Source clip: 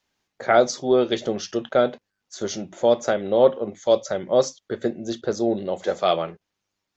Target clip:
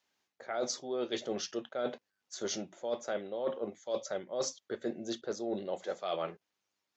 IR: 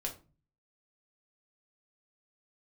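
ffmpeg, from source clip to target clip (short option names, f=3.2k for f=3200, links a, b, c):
-af "highpass=f=310:p=1,areverse,acompressor=threshold=-27dB:ratio=16,areverse,volume=-4dB"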